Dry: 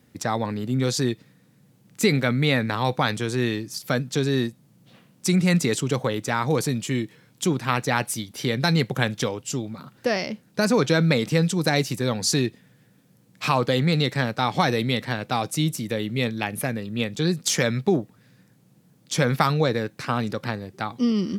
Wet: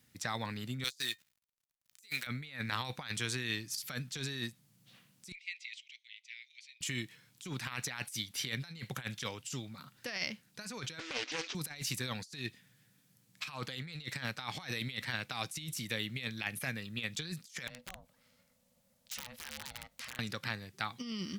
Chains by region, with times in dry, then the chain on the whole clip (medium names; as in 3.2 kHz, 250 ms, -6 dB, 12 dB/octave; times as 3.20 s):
0.84–2.27 s: hysteresis with a dead band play -44 dBFS + tilt EQ +4.5 dB/octave + feedback comb 610 Hz, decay 0.17 s, mix 40%
5.32–6.81 s: steep high-pass 2.1 kHz 72 dB/octave + tape spacing loss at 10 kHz 40 dB
10.99–11.55 s: CVSD coder 32 kbps + brick-wall FIR high-pass 250 Hz + loudspeaker Doppler distortion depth 0.32 ms
17.67–20.19 s: compression 5:1, threshold -34 dBFS + ring modulator 370 Hz + integer overflow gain 29.5 dB
whole clip: amplifier tone stack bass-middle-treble 5-5-5; compressor with a negative ratio -40 dBFS, ratio -0.5; dynamic bell 2.2 kHz, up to +4 dB, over -54 dBFS, Q 0.76